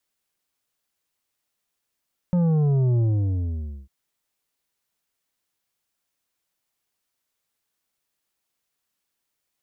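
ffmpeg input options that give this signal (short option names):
-f lavfi -i "aevalsrc='0.126*clip((1.55-t)/0.89,0,1)*tanh(2.51*sin(2*PI*180*1.55/log(65/180)*(exp(log(65/180)*t/1.55)-1)))/tanh(2.51)':d=1.55:s=44100"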